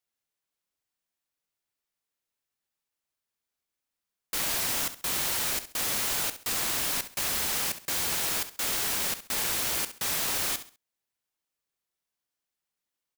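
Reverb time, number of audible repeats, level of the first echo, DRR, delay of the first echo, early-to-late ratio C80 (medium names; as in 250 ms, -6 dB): no reverb, 3, -12.5 dB, no reverb, 67 ms, no reverb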